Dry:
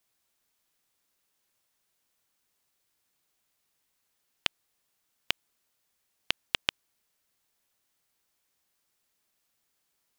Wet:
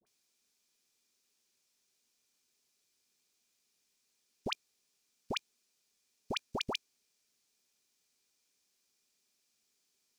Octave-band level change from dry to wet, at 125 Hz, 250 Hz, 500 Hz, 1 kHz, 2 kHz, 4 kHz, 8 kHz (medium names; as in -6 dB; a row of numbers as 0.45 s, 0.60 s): +3.5 dB, +7.0 dB, +6.0 dB, +1.5 dB, -8.5 dB, -8.0 dB, -4.0 dB